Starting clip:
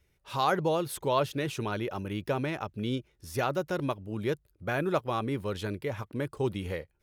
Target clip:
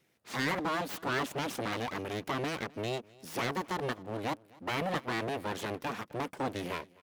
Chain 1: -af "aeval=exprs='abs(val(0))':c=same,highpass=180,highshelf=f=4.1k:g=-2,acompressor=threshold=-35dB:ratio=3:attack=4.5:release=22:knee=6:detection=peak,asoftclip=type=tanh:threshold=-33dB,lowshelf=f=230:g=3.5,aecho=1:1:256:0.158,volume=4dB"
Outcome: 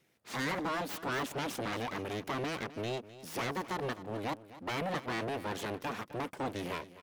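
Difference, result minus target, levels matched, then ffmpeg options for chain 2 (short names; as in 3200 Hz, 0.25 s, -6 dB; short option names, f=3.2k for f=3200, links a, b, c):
soft clip: distortion +16 dB; echo-to-direct +8 dB
-af "aeval=exprs='abs(val(0))':c=same,highpass=180,highshelf=f=4.1k:g=-2,acompressor=threshold=-35dB:ratio=3:attack=4.5:release=22:knee=6:detection=peak,asoftclip=type=tanh:threshold=-21.5dB,lowshelf=f=230:g=3.5,aecho=1:1:256:0.0631,volume=4dB"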